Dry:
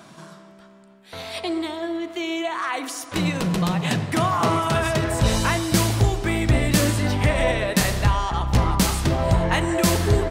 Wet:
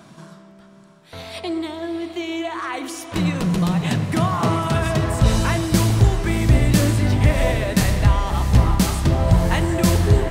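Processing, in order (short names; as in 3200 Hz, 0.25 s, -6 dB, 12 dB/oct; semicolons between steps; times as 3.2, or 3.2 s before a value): low shelf 260 Hz +7.5 dB; diffused feedback echo 0.659 s, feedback 41%, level -10.5 dB; gain -2 dB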